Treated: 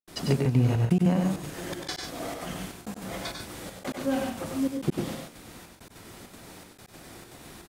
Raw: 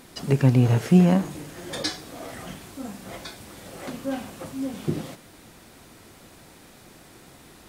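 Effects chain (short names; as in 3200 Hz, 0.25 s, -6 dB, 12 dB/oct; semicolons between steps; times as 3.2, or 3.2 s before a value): compressor 12:1, threshold -21 dBFS, peak gain reduction 11 dB; step gate ".xxxx.xxxx..x" 199 bpm -60 dB; tapped delay 86/97/114/140 ms -19/-5/-11/-8 dB; gain +1.5 dB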